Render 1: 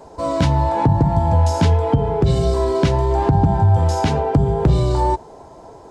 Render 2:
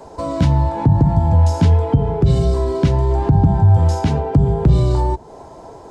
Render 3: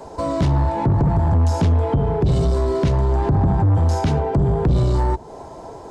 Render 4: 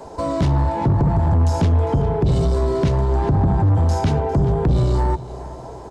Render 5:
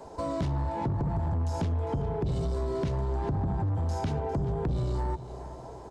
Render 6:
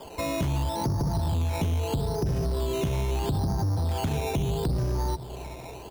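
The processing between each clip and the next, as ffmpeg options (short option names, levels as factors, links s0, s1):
-filter_complex "[0:a]acrossover=split=300[s0][s1];[s1]acompressor=threshold=0.0398:ratio=3[s2];[s0][s2]amix=inputs=2:normalize=0,volume=1.41"
-af "asoftclip=type=tanh:threshold=0.2,volume=1.19"
-af "aecho=1:1:403|806|1209:0.141|0.0579|0.0237"
-af "acompressor=threshold=0.126:ratio=6,volume=0.376"
-af "acrusher=samples=11:mix=1:aa=0.000001:lfo=1:lforange=6.6:lforate=0.76,volume=1.33"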